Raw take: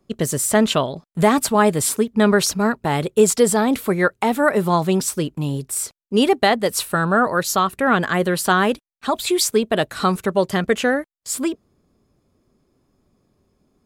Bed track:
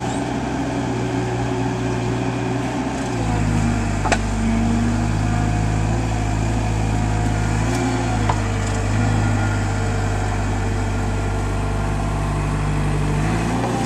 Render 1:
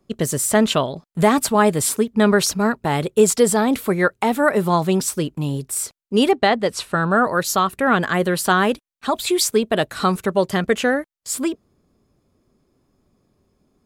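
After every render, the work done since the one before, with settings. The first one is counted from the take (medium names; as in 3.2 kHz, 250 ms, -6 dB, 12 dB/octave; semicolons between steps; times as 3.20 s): 6.31–7.11 s: distance through air 71 m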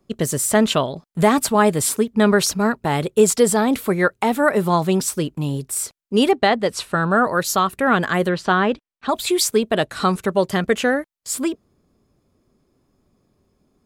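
8.29–9.09 s: distance through air 160 m; 9.72–10.22 s: low-pass 11 kHz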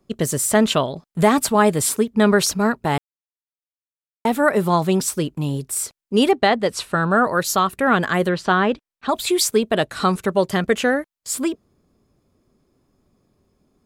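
2.98–4.25 s: mute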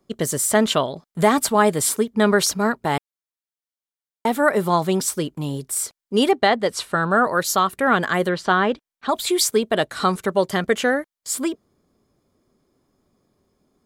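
bass shelf 180 Hz -7 dB; band-stop 2.6 kHz, Q 13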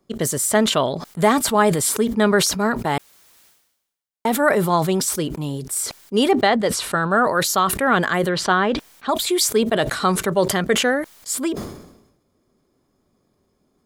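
decay stretcher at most 64 dB/s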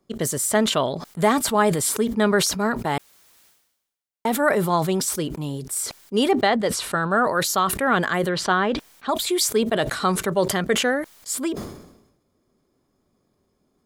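trim -2.5 dB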